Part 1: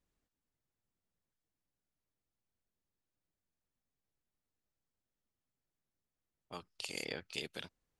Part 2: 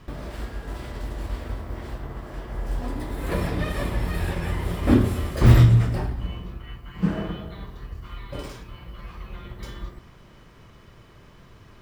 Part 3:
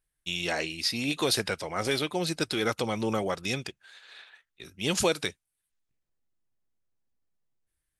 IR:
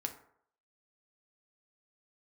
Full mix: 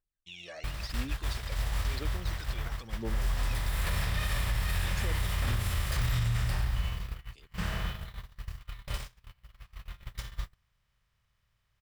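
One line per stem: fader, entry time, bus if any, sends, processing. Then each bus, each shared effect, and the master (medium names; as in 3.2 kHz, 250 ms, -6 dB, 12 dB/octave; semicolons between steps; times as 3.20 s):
-19.5 dB, 0.00 s, no send, none
+1.0 dB, 0.55 s, no send, spectral levelling over time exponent 0.6; gate -23 dBFS, range -33 dB; amplifier tone stack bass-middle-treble 10-0-10
-15.5 dB, 0.00 s, no send, Chebyshev low-pass 5.7 kHz, order 2; peak limiter -20.5 dBFS, peak gain reduction 8.5 dB; phaser 0.98 Hz, delay 1.8 ms, feedback 71%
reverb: none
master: peak limiter -21 dBFS, peak gain reduction 11 dB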